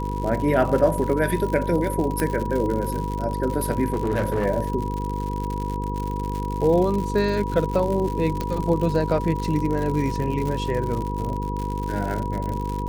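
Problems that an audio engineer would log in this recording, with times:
buzz 50 Hz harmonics 10 -28 dBFS
crackle 110 per s -27 dBFS
whine 970 Hz -30 dBFS
2.20 s: pop -10 dBFS
3.88–4.46 s: clipped -18 dBFS
8.41 s: pop -12 dBFS

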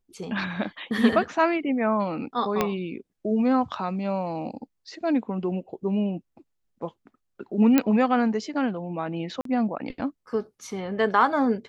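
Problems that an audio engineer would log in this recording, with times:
2.61 s: pop -8 dBFS
7.78 s: pop -6 dBFS
9.41–9.45 s: dropout 43 ms

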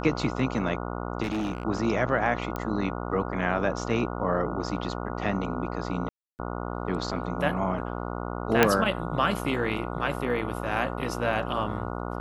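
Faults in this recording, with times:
buzz 60 Hz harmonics 24 -33 dBFS
1.22–1.65 s: clipped -25.5 dBFS
2.56 s: pop -18 dBFS
6.09–6.39 s: dropout 299 ms
8.63 s: pop -4 dBFS

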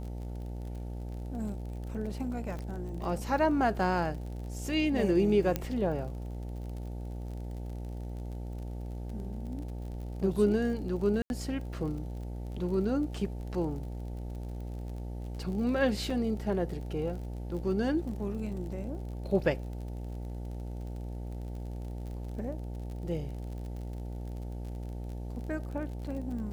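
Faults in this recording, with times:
buzz 60 Hz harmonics 15 -38 dBFS
crackle 46 per s -40 dBFS
2.59 s: pop -28 dBFS
5.56 s: pop -15 dBFS
11.22–11.30 s: dropout 81 ms
16.10 s: dropout 4 ms

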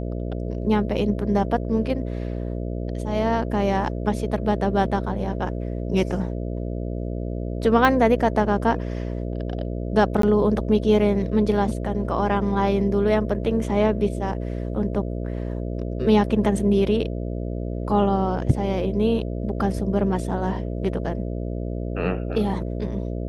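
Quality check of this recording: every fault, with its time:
buzz 60 Hz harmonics 11 -28 dBFS
7.85 s: pop -7 dBFS
10.22–10.23 s: dropout 13 ms

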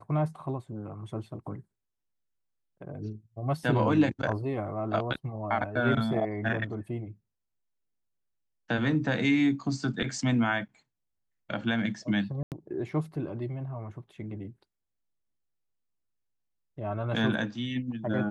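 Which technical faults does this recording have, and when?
12.43–12.52 s: dropout 88 ms

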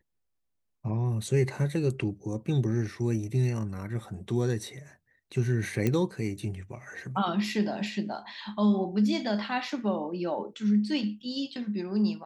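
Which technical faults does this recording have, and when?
5.87 s: pop -14 dBFS

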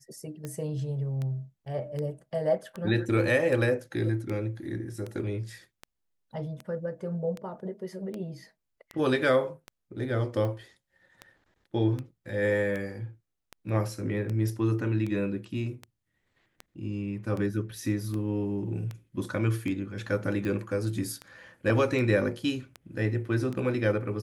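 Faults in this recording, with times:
tick 78 rpm -23 dBFS

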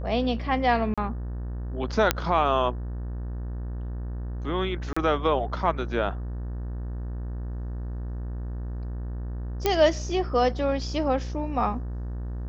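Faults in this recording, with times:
buzz 60 Hz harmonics 31 -32 dBFS
0.94–0.98 s: dropout 36 ms
2.11 s: pop -3 dBFS
4.93–4.96 s: dropout 35 ms
9.66 s: pop -8 dBFS

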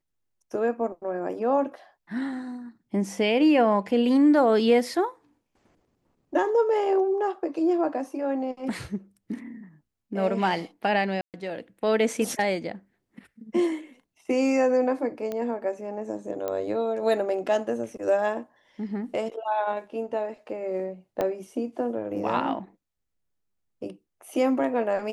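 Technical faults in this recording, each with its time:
11.21–11.34 s: dropout 128 ms
15.32 s: pop -19 dBFS
16.48 s: pop -17 dBFS
21.21 s: pop -14 dBFS

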